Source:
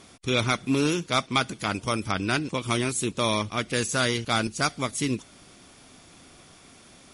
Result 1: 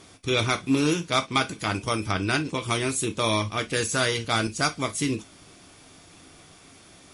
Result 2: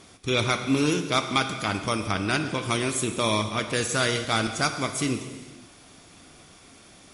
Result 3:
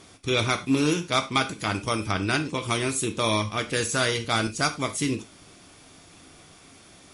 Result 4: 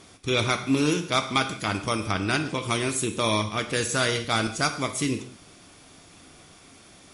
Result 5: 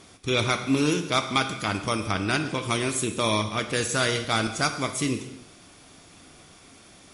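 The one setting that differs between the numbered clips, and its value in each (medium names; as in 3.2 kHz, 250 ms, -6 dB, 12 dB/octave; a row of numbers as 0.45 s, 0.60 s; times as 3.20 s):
gated-style reverb, gate: 80 ms, 530 ms, 120 ms, 220 ms, 330 ms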